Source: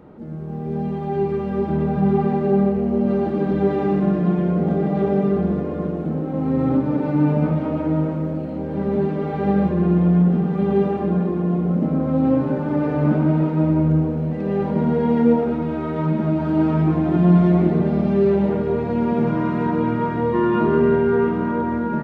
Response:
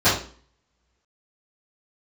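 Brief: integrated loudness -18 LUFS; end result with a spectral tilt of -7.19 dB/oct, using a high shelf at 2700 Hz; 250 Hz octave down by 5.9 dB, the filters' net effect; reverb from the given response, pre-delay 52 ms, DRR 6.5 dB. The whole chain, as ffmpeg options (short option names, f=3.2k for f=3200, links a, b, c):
-filter_complex "[0:a]equalizer=f=250:t=o:g=-9,highshelf=f=2.7k:g=-5.5,asplit=2[a][b];[1:a]atrim=start_sample=2205,adelay=52[c];[b][c]afir=irnorm=-1:irlink=0,volume=-27dB[d];[a][d]amix=inputs=2:normalize=0,volume=5dB"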